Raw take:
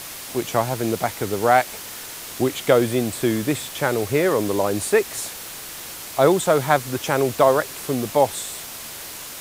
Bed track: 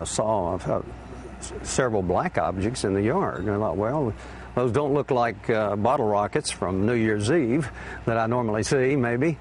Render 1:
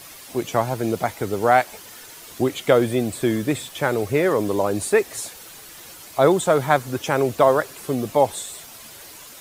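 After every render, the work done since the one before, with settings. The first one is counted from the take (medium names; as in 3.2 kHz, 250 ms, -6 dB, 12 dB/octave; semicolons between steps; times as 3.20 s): noise reduction 9 dB, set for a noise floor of -36 dBFS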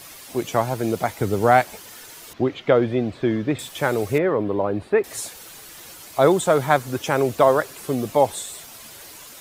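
1.18–1.76 s: peaking EQ 110 Hz +6.5 dB 2.5 oct; 2.33–3.59 s: distance through air 240 m; 4.18–5.04 s: distance through air 440 m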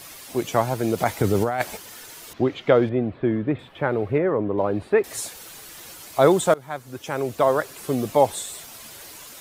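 0.98–1.77 s: compressor with a negative ratio -21 dBFS; 2.89–4.58 s: distance through air 490 m; 6.54–7.96 s: fade in, from -22.5 dB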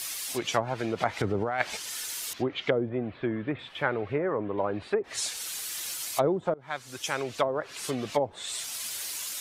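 low-pass that closes with the level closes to 470 Hz, closed at -14 dBFS; tilt shelf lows -9 dB, about 1.4 kHz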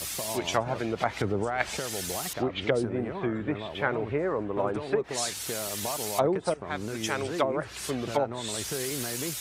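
add bed track -13 dB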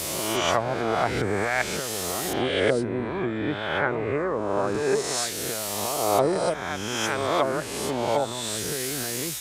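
reverse spectral sustain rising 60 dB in 1.32 s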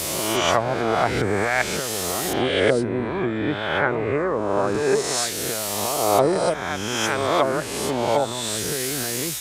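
trim +3.5 dB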